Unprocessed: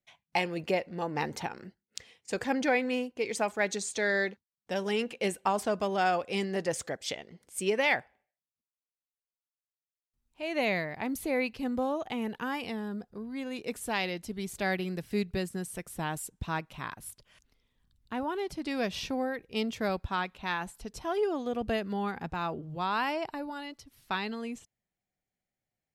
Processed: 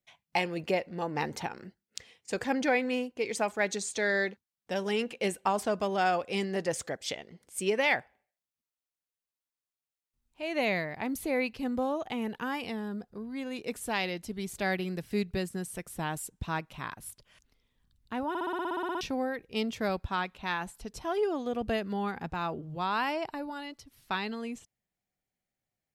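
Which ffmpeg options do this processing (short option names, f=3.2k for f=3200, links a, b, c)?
-filter_complex "[0:a]asplit=13[a][b][c][d][e][f][g][h][i][j][k][l][m];[a]atrim=end=18.352[n];[b]atrim=start=18.288:end=18.352[o];[c]atrim=start=18.288:end=18.352[p];[d]atrim=start=18.288:end=18.352[q];[e]atrim=start=18.288:end=18.352[r];[f]atrim=start=18.288:end=18.352[s];[g]atrim=start=18.288:end=18.352[t];[h]atrim=start=18.288:end=18.352[u];[i]atrim=start=18.288:end=18.352[v];[j]atrim=start=18.288:end=18.352[w];[k]atrim=start=18.288:end=18.352[x];[l]atrim=start=18.288:end=18.352[y];[m]atrim=start=19.008[z];[n][o]acrossfade=d=0.004:c1=hsin:c2=hsin[aa];[aa][p]acrossfade=d=0.004:c1=hsin:c2=hsin[ab];[ab][q]acrossfade=d=0.004:c1=hsin:c2=hsin[ac];[ac][r]acrossfade=d=0.004:c1=hsin:c2=hsin[ad];[ad][s]acrossfade=d=0.004:c1=hsin:c2=hsin[ae];[ae][t]acrossfade=d=0.004:c1=hsin:c2=hsin[af];[af][u]acrossfade=d=0.004:c1=hsin:c2=hsin[ag];[ag][v]acrossfade=d=0.004:c1=hsin:c2=hsin[ah];[ah][w]acrossfade=d=0.004:c1=hsin:c2=hsin[ai];[ai][x]acrossfade=d=0.004:c1=hsin:c2=hsin[aj];[aj][y]acrossfade=d=0.004:c1=hsin:c2=hsin[ak];[ak][z]acrossfade=d=0.004:c1=hsin:c2=hsin"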